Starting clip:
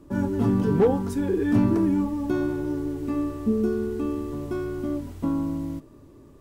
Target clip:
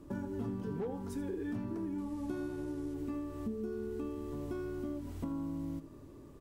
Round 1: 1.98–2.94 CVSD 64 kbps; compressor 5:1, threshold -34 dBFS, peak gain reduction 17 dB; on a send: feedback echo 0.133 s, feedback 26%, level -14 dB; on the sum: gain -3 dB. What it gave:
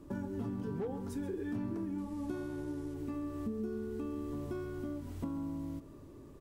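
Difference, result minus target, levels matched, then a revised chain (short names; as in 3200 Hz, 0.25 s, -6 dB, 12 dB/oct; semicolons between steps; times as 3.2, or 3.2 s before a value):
echo 53 ms late
1.98–2.94 CVSD 64 kbps; compressor 5:1, threshold -34 dBFS, peak gain reduction 17 dB; on a send: feedback echo 80 ms, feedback 26%, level -14 dB; on the sum: gain -3 dB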